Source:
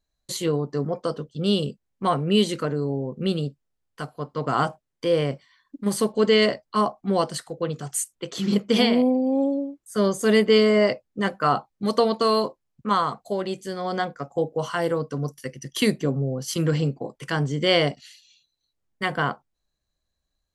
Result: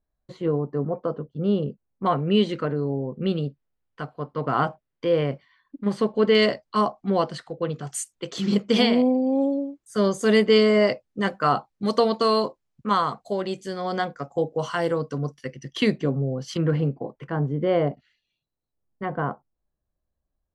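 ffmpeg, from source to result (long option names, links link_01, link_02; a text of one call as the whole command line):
ffmpeg -i in.wav -af "asetnsamples=nb_out_samples=441:pad=0,asendcmd='2.06 lowpass f 2900;6.35 lowpass f 6600;7.1 lowpass f 3600;7.87 lowpass f 7700;15.18 lowpass f 3900;16.57 lowpass f 1800;17.27 lowpass f 1000',lowpass=1300" out.wav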